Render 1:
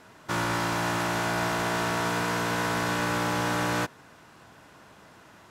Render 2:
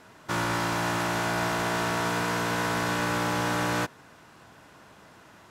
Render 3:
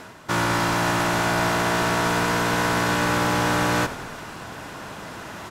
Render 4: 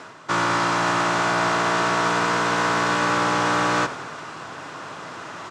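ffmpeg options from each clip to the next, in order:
-af anull
-filter_complex "[0:a]areverse,acompressor=mode=upward:threshold=0.0282:ratio=2.5,areverse,asplit=8[s0][s1][s2][s3][s4][s5][s6][s7];[s1]adelay=88,afreqshift=-42,volume=0.178[s8];[s2]adelay=176,afreqshift=-84,volume=0.114[s9];[s3]adelay=264,afreqshift=-126,volume=0.0724[s10];[s4]adelay=352,afreqshift=-168,volume=0.0468[s11];[s5]adelay=440,afreqshift=-210,volume=0.0299[s12];[s6]adelay=528,afreqshift=-252,volume=0.0191[s13];[s7]adelay=616,afreqshift=-294,volume=0.0122[s14];[s0][s8][s9][s10][s11][s12][s13][s14]amix=inputs=8:normalize=0,volume=1.88"
-af "highpass=f=110:w=0.5412,highpass=f=110:w=1.3066,equalizer=f=120:t=q:w=4:g=-4,equalizer=f=210:t=q:w=4:g=-8,equalizer=f=1200:t=q:w=4:g=6,lowpass=f=8000:w=0.5412,lowpass=f=8000:w=1.3066"

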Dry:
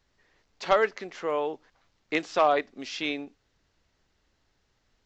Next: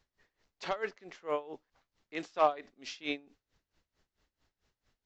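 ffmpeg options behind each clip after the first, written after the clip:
-af "aeval=exprs='val(0)*pow(10,-20*(0.5-0.5*cos(2*PI*4.5*n/s))/20)':c=same,volume=0.794"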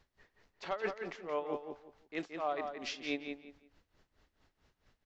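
-filter_complex "[0:a]highshelf=f=5000:g=-8.5,areverse,acompressor=threshold=0.0126:ratio=20,areverse,asplit=2[s0][s1];[s1]adelay=173,lowpass=f=4100:p=1,volume=0.501,asplit=2[s2][s3];[s3]adelay=173,lowpass=f=4100:p=1,volume=0.25,asplit=2[s4][s5];[s5]adelay=173,lowpass=f=4100:p=1,volume=0.25[s6];[s0][s2][s4][s6]amix=inputs=4:normalize=0,volume=2"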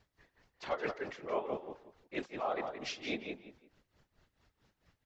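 -af "afftfilt=real='hypot(re,im)*cos(2*PI*random(0))':imag='hypot(re,im)*sin(2*PI*random(1))':win_size=512:overlap=0.75,volume=2"

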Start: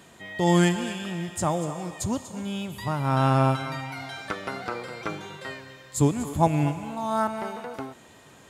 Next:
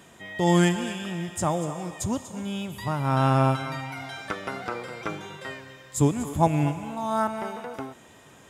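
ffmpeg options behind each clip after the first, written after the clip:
-af "bandreject=f=4300:w=8.6"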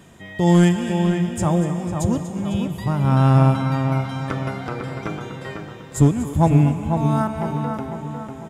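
-filter_complex "[0:a]lowshelf=f=250:g=11.5,aeval=exprs='clip(val(0),-1,0.251)':c=same,asplit=2[s0][s1];[s1]adelay=499,lowpass=f=2400:p=1,volume=0.531,asplit=2[s2][s3];[s3]adelay=499,lowpass=f=2400:p=1,volume=0.5,asplit=2[s4][s5];[s5]adelay=499,lowpass=f=2400:p=1,volume=0.5,asplit=2[s6][s7];[s7]adelay=499,lowpass=f=2400:p=1,volume=0.5,asplit=2[s8][s9];[s9]adelay=499,lowpass=f=2400:p=1,volume=0.5,asplit=2[s10][s11];[s11]adelay=499,lowpass=f=2400:p=1,volume=0.5[s12];[s2][s4][s6][s8][s10][s12]amix=inputs=6:normalize=0[s13];[s0][s13]amix=inputs=2:normalize=0"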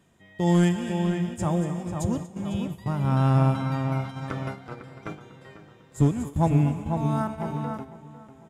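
-af "agate=range=0.355:threshold=0.0501:ratio=16:detection=peak,volume=0.501"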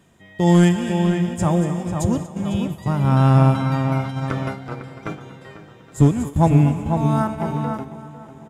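-af "aecho=1:1:818:0.0841,volume=2.11"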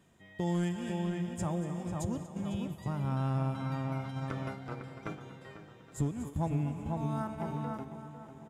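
-af "acompressor=threshold=0.0501:ratio=2,volume=0.355"

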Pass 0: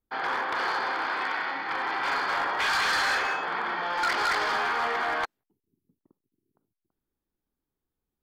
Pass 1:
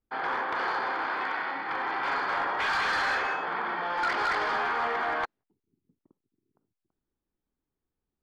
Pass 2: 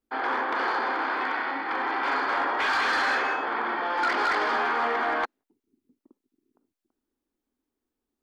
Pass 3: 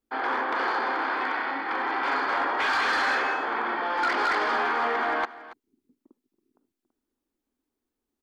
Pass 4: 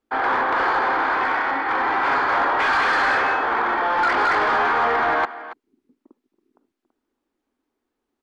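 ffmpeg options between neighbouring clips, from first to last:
-af "lowpass=f=2200:p=1"
-af "lowshelf=f=200:t=q:w=3:g=-7,volume=1.33"
-af "aecho=1:1:279:0.133"
-filter_complex "[0:a]asplit=2[s0][s1];[s1]highpass=f=720:p=1,volume=3.16,asoftclip=type=tanh:threshold=0.141[s2];[s0][s2]amix=inputs=2:normalize=0,lowpass=f=1400:p=1,volume=0.501,volume=2.11"

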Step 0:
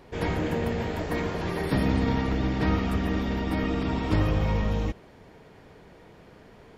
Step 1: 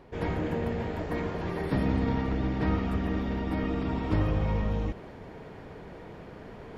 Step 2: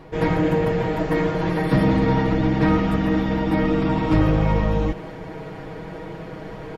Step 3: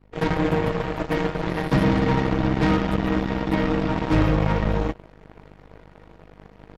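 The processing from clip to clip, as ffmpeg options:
-af "areverse,acompressor=mode=upward:threshold=0.0282:ratio=2.5,areverse,highshelf=f=3300:g=-10,volume=0.75"
-filter_complex "[0:a]aecho=1:1:6.3:0.84,asplit=2[s0][s1];[s1]aeval=exprs='0.0944*(abs(mod(val(0)/0.0944+3,4)-2)-1)':c=same,volume=0.376[s2];[s0][s2]amix=inputs=2:normalize=0,volume=1.78"
-af "aeval=exprs='val(0)+0.0224*(sin(2*PI*50*n/s)+sin(2*PI*2*50*n/s)/2+sin(2*PI*3*50*n/s)/3+sin(2*PI*4*50*n/s)/4+sin(2*PI*5*50*n/s)/5)':c=same,aeval=exprs='0.398*(cos(1*acos(clip(val(0)/0.398,-1,1)))-cos(1*PI/2))+0.0251*(cos(5*acos(clip(val(0)/0.398,-1,1)))-cos(5*PI/2))+0.0251*(cos(6*acos(clip(val(0)/0.398,-1,1)))-cos(6*PI/2))+0.0708*(cos(7*acos(clip(val(0)/0.398,-1,1)))-cos(7*PI/2))+0.0282*(cos(8*acos(clip(val(0)/0.398,-1,1)))-cos(8*PI/2))':c=same,volume=0.75"

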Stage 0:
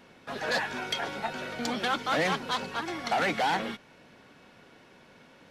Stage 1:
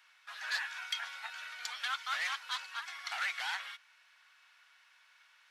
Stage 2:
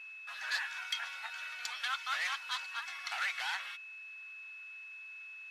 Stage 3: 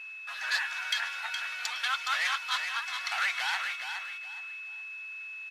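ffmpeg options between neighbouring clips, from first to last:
-af "highpass=f=1200:w=0.5412,highpass=f=1200:w=1.3066,volume=0.596"
-af "aeval=exprs='val(0)+0.00501*sin(2*PI*2600*n/s)':c=same,acontrast=39,volume=0.531"
-af "aecho=1:1:417|834|1251:0.447|0.125|0.035,volume=1.88"

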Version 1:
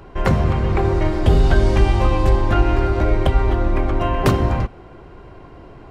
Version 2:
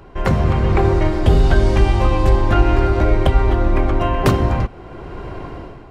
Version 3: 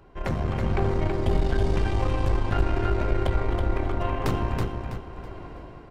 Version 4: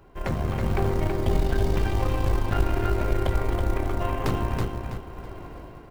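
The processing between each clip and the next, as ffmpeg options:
-af "dynaudnorm=f=110:g=7:m=3.98,volume=0.891"
-filter_complex "[0:a]aeval=exprs='(tanh(3.16*val(0)+0.65)-tanh(0.65))/3.16':c=same,asplit=2[s0][s1];[s1]aecho=0:1:326|652|978|1304:0.562|0.18|0.0576|0.0184[s2];[s0][s2]amix=inputs=2:normalize=0,volume=0.422"
-af "acrusher=bits=7:mode=log:mix=0:aa=0.000001"

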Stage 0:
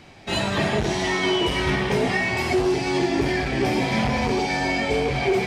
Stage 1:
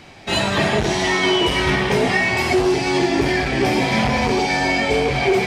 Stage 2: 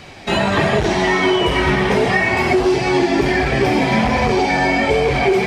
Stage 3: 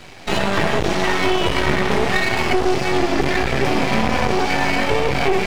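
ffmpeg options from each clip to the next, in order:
-af "lowshelf=f=430:g=-3,volume=1.88"
-filter_complex "[0:a]flanger=delay=1.6:depth=3.5:regen=-50:speed=1.4:shape=sinusoidal,acrossover=split=2300|6400[s0][s1][s2];[s0]acompressor=threshold=0.0891:ratio=4[s3];[s1]acompressor=threshold=0.01:ratio=4[s4];[s2]acompressor=threshold=0.002:ratio=4[s5];[s3][s4][s5]amix=inputs=3:normalize=0,volume=2.82"
-af "aeval=exprs='max(val(0),0)':c=same,volume=1.19"

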